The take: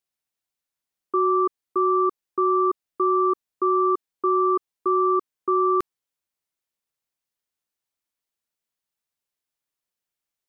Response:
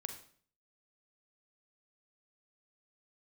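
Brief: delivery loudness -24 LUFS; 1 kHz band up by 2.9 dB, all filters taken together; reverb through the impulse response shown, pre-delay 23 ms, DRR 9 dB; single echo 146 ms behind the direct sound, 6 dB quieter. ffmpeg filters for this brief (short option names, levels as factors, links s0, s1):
-filter_complex "[0:a]equalizer=f=1000:t=o:g=3.5,aecho=1:1:146:0.501,asplit=2[s0][s1];[1:a]atrim=start_sample=2205,adelay=23[s2];[s1][s2]afir=irnorm=-1:irlink=0,volume=0.447[s3];[s0][s3]amix=inputs=2:normalize=0,volume=0.473"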